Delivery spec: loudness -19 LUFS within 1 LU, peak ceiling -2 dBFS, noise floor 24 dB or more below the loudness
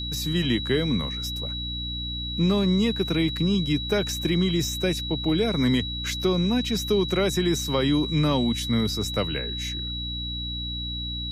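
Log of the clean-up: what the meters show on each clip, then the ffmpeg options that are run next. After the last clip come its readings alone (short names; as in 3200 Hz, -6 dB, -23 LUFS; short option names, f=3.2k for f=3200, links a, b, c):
hum 60 Hz; harmonics up to 300 Hz; hum level -31 dBFS; steady tone 3900 Hz; tone level -31 dBFS; loudness -25.0 LUFS; peak -11.5 dBFS; loudness target -19.0 LUFS
-> -af "bandreject=f=60:t=h:w=4,bandreject=f=120:t=h:w=4,bandreject=f=180:t=h:w=4,bandreject=f=240:t=h:w=4,bandreject=f=300:t=h:w=4"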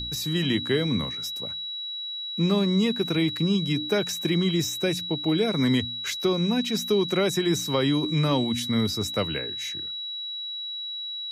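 hum none; steady tone 3900 Hz; tone level -31 dBFS
-> -af "bandreject=f=3.9k:w=30"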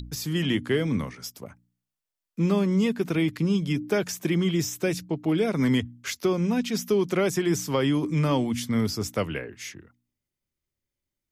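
steady tone none; loudness -26.0 LUFS; peak -12.5 dBFS; loudness target -19.0 LUFS
-> -af "volume=7dB"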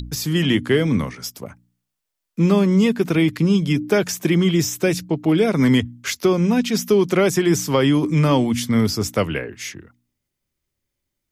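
loudness -19.0 LUFS; peak -5.5 dBFS; noise floor -80 dBFS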